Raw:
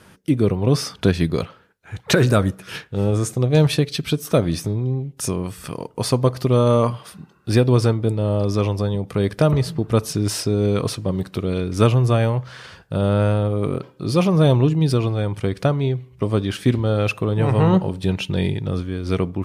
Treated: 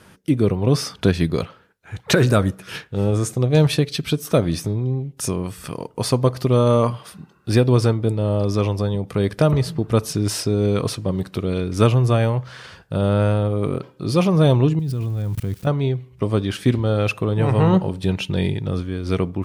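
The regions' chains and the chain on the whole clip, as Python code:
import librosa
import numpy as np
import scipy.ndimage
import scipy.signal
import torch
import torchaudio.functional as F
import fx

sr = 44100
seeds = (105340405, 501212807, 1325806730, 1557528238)

y = fx.chain(x, sr, fx.crossing_spikes(level_db=-21.0),
    fx.bass_treble(bass_db=12, treble_db=-3),
    fx.level_steps(step_db=23), at=(14.79, 15.67))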